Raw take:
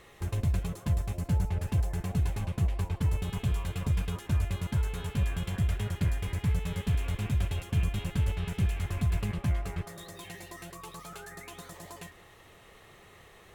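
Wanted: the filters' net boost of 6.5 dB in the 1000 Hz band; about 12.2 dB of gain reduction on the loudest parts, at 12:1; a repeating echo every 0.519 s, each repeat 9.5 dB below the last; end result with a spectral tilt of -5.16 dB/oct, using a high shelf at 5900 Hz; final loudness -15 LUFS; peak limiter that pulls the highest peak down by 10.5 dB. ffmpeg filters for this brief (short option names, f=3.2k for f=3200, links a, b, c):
-af "equalizer=f=1k:t=o:g=8,highshelf=f=5.9k:g=4,acompressor=threshold=-35dB:ratio=12,alimiter=level_in=10dB:limit=-24dB:level=0:latency=1,volume=-10dB,aecho=1:1:519|1038|1557|2076:0.335|0.111|0.0365|0.012,volume=28.5dB"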